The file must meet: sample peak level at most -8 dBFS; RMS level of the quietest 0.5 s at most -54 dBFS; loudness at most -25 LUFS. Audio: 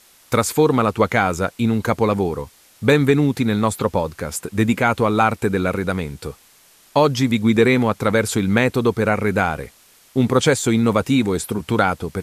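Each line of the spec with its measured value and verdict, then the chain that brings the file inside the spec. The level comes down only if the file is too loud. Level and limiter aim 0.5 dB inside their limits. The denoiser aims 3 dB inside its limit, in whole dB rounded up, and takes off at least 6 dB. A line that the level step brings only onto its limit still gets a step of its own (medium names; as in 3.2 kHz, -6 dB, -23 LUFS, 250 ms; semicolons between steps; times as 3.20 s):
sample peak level -3.5 dBFS: fail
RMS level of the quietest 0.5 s -52 dBFS: fail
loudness -19.0 LUFS: fail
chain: trim -6.5 dB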